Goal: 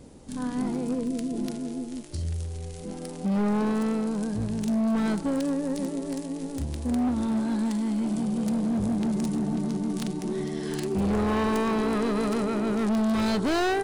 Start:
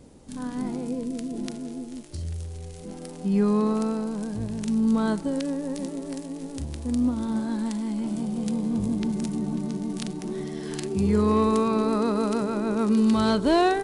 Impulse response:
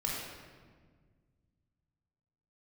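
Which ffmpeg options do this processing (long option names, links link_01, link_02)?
-af "asoftclip=type=hard:threshold=-24.5dB,volume=2dB"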